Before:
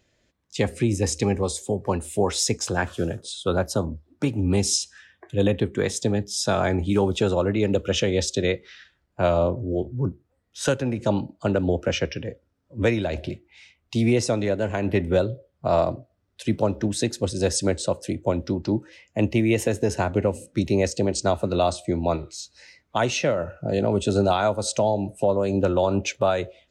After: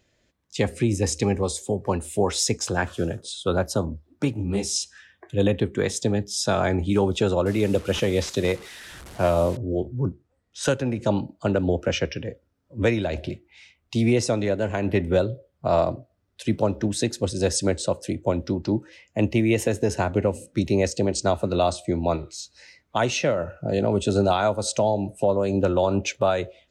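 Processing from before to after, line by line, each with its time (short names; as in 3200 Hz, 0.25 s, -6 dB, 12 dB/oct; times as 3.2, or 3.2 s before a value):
4.33–4.76 detuned doubles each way 39 cents
7.46–9.57 delta modulation 64 kbps, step -36 dBFS
10.07–10.63 steep low-pass 9700 Hz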